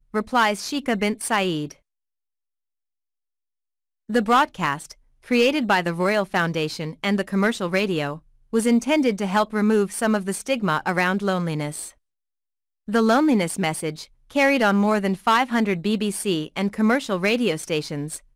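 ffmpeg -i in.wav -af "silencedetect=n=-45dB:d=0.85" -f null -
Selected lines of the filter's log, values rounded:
silence_start: 1.74
silence_end: 4.09 | silence_duration: 2.35
silence_start: 11.91
silence_end: 12.88 | silence_duration: 0.97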